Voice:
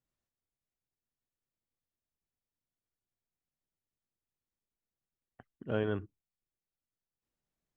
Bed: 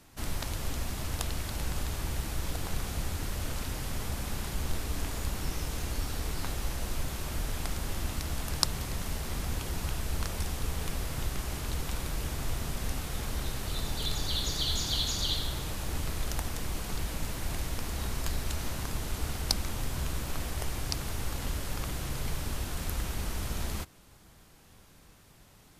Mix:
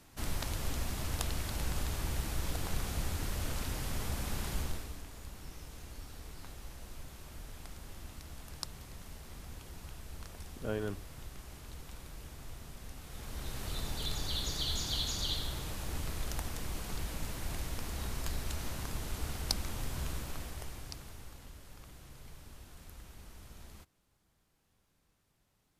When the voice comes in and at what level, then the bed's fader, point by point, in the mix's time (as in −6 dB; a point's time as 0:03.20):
4.95 s, −4.0 dB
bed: 0:04.58 −2 dB
0:05.04 −14 dB
0:12.95 −14 dB
0:13.63 −4.5 dB
0:20.10 −4.5 dB
0:21.51 −18 dB